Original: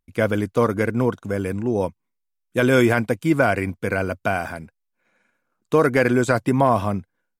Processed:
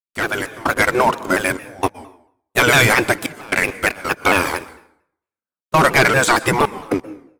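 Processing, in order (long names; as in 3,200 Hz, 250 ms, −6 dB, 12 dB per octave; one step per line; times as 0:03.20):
gate on every frequency bin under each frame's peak −10 dB weak
leveller curve on the samples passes 3
gate pattern ".xxx.xxxxxxx." 115 BPM −24 dB
noise gate with hold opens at −39 dBFS
convolution reverb RT60 0.65 s, pre-delay 113 ms, DRR 17 dB
automatic gain control gain up to 10.5 dB
pitch modulation by a square or saw wave saw down 4.4 Hz, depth 160 cents
level −2.5 dB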